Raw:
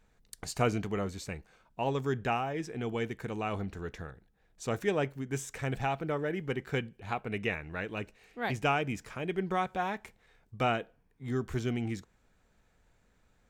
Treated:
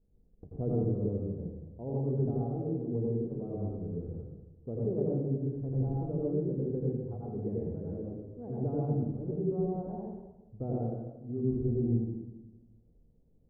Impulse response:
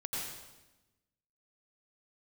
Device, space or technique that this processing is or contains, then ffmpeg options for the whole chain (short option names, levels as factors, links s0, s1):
next room: -filter_complex "[0:a]lowpass=f=480:w=0.5412,lowpass=f=480:w=1.3066[s0];[1:a]atrim=start_sample=2205[s1];[s0][s1]afir=irnorm=-1:irlink=0"